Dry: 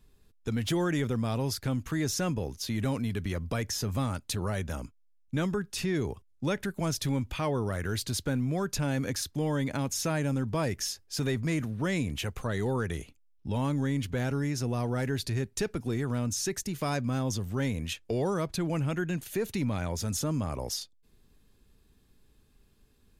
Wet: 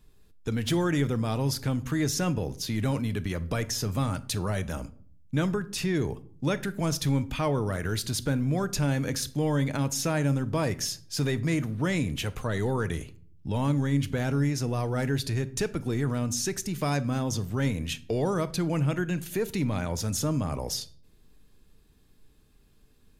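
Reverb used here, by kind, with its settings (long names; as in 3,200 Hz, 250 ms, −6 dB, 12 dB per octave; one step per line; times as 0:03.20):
rectangular room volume 700 cubic metres, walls furnished, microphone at 0.49 metres
level +2 dB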